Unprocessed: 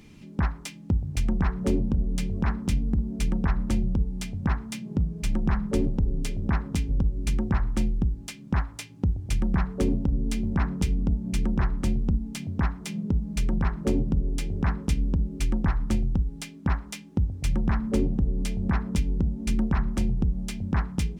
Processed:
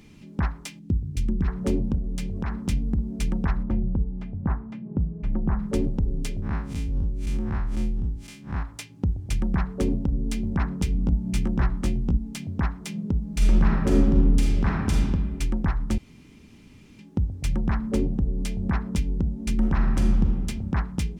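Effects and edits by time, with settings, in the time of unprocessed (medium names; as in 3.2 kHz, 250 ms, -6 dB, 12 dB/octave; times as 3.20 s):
0.79–1.48 s: FFT filter 380 Hz 0 dB, 710 Hz -16 dB, 3.3 kHz -4 dB
1.98–2.52 s: compression 2.5:1, threshold -25 dBFS
3.63–5.59 s: low-pass 1.2 kHz
6.42–8.63 s: spectral blur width 102 ms
10.93–12.17 s: doubling 17 ms -5 dB
13.30–15.00 s: reverb throw, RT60 1.4 s, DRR -2 dB
15.98–16.99 s: room tone
19.56–20.31 s: reverb throw, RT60 1.5 s, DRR 1.5 dB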